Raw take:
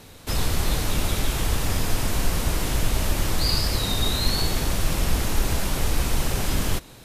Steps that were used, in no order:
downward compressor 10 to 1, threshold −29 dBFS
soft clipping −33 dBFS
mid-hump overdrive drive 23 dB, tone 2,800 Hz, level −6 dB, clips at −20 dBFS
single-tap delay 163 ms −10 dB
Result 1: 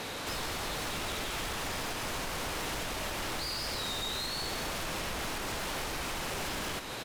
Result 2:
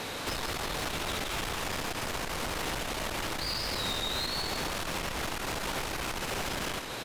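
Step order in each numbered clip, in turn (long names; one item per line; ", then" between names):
downward compressor, then mid-hump overdrive, then soft clipping, then single-tap delay
downward compressor, then soft clipping, then single-tap delay, then mid-hump overdrive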